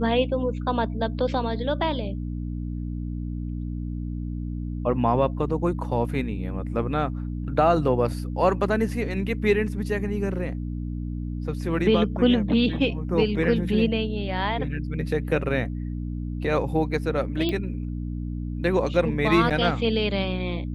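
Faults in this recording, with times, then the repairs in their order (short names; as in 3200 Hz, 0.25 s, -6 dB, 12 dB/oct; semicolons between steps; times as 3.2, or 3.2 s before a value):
hum 60 Hz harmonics 5 -30 dBFS
17.49 pop -15 dBFS
19.5–19.51 gap 7.1 ms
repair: de-click; de-hum 60 Hz, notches 5; interpolate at 19.5, 7.1 ms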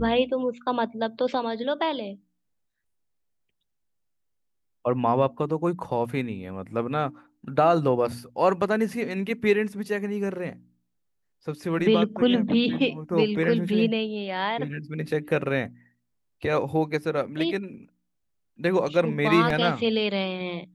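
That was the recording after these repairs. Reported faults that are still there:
none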